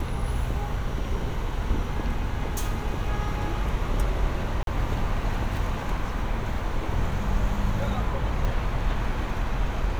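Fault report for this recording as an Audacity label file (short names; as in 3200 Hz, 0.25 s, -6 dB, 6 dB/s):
4.630000	4.670000	gap 42 ms
8.450000	8.450000	pop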